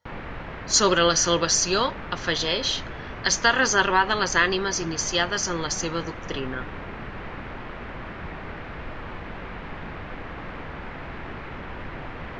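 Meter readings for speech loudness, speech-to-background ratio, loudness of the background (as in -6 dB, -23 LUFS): -22.5 LUFS, 14.5 dB, -37.0 LUFS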